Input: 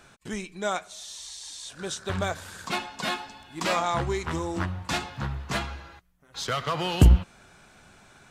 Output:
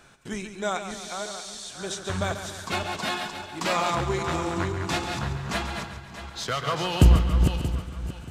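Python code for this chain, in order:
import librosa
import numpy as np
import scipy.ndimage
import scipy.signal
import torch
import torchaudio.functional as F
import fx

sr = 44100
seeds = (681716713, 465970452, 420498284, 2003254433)

y = fx.reverse_delay_fb(x, sr, ms=315, feedback_pct=49, wet_db=-6.0)
y = fx.echo_feedback(y, sr, ms=139, feedback_pct=49, wet_db=-10)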